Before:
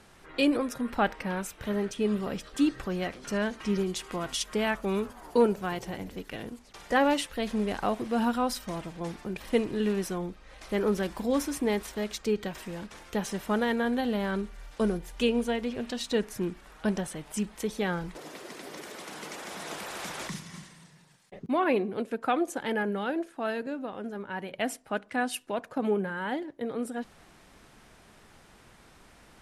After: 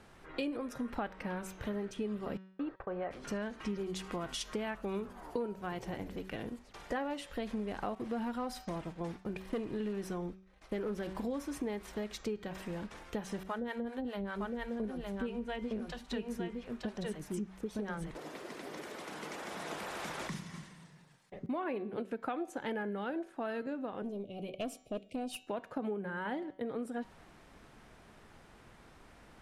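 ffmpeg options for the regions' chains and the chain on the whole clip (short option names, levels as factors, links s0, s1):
-filter_complex "[0:a]asettb=1/sr,asplit=3[s0][s1][s2];[s0]atrim=end=2.374[s3];[s1]atrim=start=2.37:end=3.11,asetpts=PTS-STARTPTS,afade=t=in:d=0.004:c=qsin,afade=t=out:st=0.736:d=0.004:c=qsin,lowpass=1400,agate=range=0.0141:threshold=0.00891:ratio=16:release=100:detection=peak,lowshelf=f=370:t=q:w=1.5:g=-8.5[s4];[s2]atrim=start=3.106[s5];[s3][s4]acrossfade=d=0.004:c1=hsin:c2=qsin[s6];[s6][s5]acrossfade=d=0.004:c1=qsin:c2=hsin,asettb=1/sr,asplit=3[s7][s8][s9];[s7]atrim=end=7.954[s10];[s8]atrim=start=7.95:end=11.15,asetpts=PTS-STARTPTS,afade=t=in:d=0.004:c=qsin,afade=t=out:st=3.196:d=0.004:c=qsin,agate=range=0.0224:threshold=0.01:ratio=3:release=100:detection=peak,volume=11.9,asoftclip=hard,volume=0.0841[s11];[s9]atrim=start=11.146[s12];[s10][s11]acrossfade=d=0.004:c1=hsin:c2=qsin[s13];[s13][s12]acrossfade=d=0.004:c1=qsin:c2=hsin,asettb=1/sr,asplit=3[s14][s15][s16];[s14]atrim=end=13.434[s17];[s15]atrim=start=13.43:end=18.11,asetpts=PTS-STARTPTS,afade=t=in:d=0.004:c=qsin,afade=t=out:st=4.676:d=0.004:c=qsin,acrossover=split=550[s18][s19];[s18]aeval=exprs='val(0)*(1-1/2+1/2*cos(2*PI*5*n/s))':c=same[s20];[s19]aeval=exprs='val(0)*(1-1/2-1/2*cos(2*PI*5*n/s))':c=same[s21];[s20][s21]amix=inputs=2:normalize=0,aecho=1:1:911:0.708,atrim=end_sample=206388[s22];[s16]atrim=start=18.106[s23];[s17][s22]acrossfade=d=0.004:c1=hsin:c2=qsin[s24];[s24][s23]acrossfade=d=0.004:c1=qsin:c2=hsin,asettb=1/sr,asplit=3[s25][s26][s27];[s25]atrim=end=24.024[s28];[s26]atrim=start=24.02:end=25.47,asetpts=PTS-STARTPTS,afade=t=in:d=0.004:c=qsin,afade=t=out:st=1.446:d=0.004:c=qsin,asuperstop=centerf=1300:order=20:qfactor=0.82,aeval=exprs='(tanh(20*val(0)+0.2)-tanh(0.2))/20':c=same[s29];[s27]atrim=start=25.466[s30];[s28][s29]acrossfade=d=0.004:c1=hsin:c2=qsin[s31];[s31][s30]acrossfade=d=0.004:c1=qsin:c2=hsin,highshelf=f=3300:g=-8,bandreject=f=189:t=h:w=4,bandreject=f=378:t=h:w=4,bandreject=f=567:t=h:w=4,bandreject=f=756:t=h:w=4,bandreject=f=945:t=h:w=4,bandreject=f=1134:t=h:w=4,bandreject=f=1323:t=h:w=4,bandreject=f=1512:t=h:w=4,bandreject=f=1701:t=h:w=4,bandreject=f=1890:t=h:w=4,bandreject=f=2079:t=h:w=4,bandreject=f=2268:t=h:w=4,bandreject=f=2457:t=h:w=4,bandreject=f=2646:t=h:w=4,bandreject=f=2835:t=h:w=4,bandreject=f=3024:t=h:w=4,bandreject=f=3213:t=h:w=4,bandreject=f=3402:t=h:w=4,bandreject=f=3591:t=h:w=4,bandreject=f=3780:t=h:w=4,bandreject=f=3969:t=h:w=4,bandreject=f=4158:t=h:w=4,bandreject=f=4347:t=h:w=4,bandreject=f=4536:t=h:w=4,bandreject=f=4725:t=h:w=4,bandreject=f=4914:t=h:w=4,bandreject=f=5103:t=h:w=4,bandreject=f=5292:t=h:w=4,bandreject=f=5481:t=h:w=4,bandreject=f=5670:t=h:w=4,bandreject=f=5859:t=h:w=4,bandreject=f=6048:t=h:w=4,bandreject=f=6237:t=h:w=4,bandreject=f=6426:t=h:w=4,bandreject=f=6615:t=h:w=4,bandreject=f=6804:t=h:w=4,bandreject=f=6993:t=h:w=4,bandreject=f=7182:t=h:w=4,bandreject=f=7371:t=h:w=4,acompressor=threshold=0.0224:ratio=6,volume=0.891"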